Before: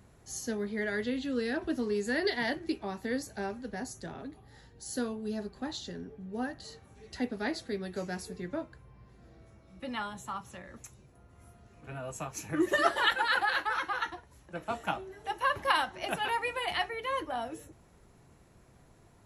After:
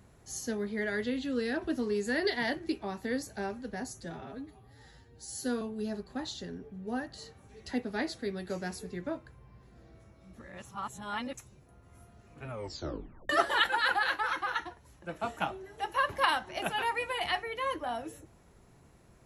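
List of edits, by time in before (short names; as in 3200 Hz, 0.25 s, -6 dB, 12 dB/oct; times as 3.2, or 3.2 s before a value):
4.01–5.08 stretch 1.5×
9.81–10.81 reverse
11.91 tape stop 0.85 s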